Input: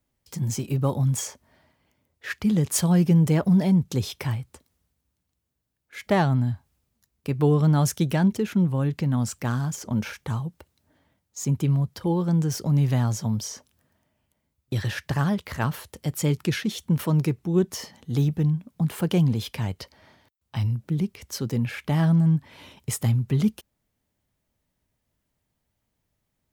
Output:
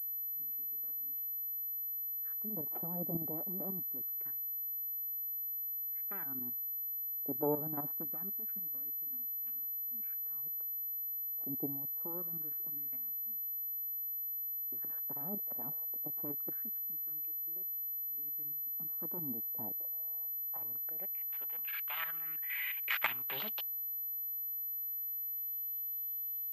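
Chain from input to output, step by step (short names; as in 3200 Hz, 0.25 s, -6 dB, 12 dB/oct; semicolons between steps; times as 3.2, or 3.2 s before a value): self-modulated delay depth 0.54 ms; LFO high-pass sine 0.24 Hz 740–3000 Hz; level quantiser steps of 12 dB; low-pass sweep 270 Hz -> 4400 Hz, 19.73–23.73; spectral noise reduction 11 dB; pulse-width modulation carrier 12000 Hz; gain +3.5 dB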